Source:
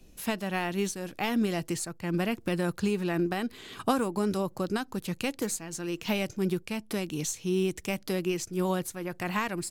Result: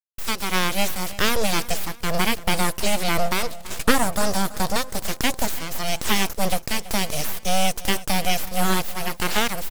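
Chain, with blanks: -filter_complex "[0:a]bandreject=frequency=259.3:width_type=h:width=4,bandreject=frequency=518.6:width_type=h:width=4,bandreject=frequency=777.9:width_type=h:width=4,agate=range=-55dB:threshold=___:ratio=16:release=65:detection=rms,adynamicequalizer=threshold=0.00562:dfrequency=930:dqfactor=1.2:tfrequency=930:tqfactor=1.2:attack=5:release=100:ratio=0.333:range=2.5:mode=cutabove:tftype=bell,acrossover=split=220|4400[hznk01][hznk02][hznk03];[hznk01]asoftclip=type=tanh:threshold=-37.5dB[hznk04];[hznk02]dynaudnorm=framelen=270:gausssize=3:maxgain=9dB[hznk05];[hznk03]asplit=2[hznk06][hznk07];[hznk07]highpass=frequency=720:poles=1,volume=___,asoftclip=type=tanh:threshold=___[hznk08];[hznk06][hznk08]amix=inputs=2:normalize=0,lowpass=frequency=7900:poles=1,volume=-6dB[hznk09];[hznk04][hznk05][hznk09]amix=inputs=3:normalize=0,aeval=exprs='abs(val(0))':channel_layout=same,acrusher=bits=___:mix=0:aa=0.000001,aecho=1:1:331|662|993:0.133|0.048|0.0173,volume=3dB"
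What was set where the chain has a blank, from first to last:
-44dB, 33dB, -20dB, 10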